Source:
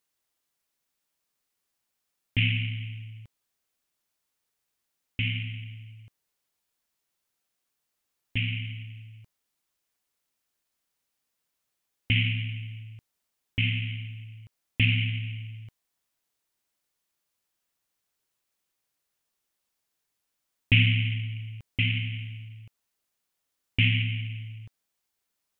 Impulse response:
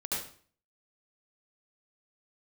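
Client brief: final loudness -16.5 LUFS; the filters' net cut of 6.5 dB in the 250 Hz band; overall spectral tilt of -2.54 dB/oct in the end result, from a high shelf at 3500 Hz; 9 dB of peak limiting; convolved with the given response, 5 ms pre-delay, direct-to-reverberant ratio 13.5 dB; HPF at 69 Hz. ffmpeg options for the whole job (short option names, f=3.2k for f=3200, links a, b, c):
-filter_complex "[0:a]highpass=69,equalizer=f=250:t=o:g=-8.5,highshelf=f=3.5k:g=-3.5,alimiter=limit=-17.5dB:level=0:latency=1,asplit=2[a][b];[1:a]atrim=start_sample=2205,adelay=5[c];[b][c]afir=irnorm=-1:irlink=0,volume=-18dB[d];[a][d]amix=inputs=2:normalize=0,volume=15.5dB"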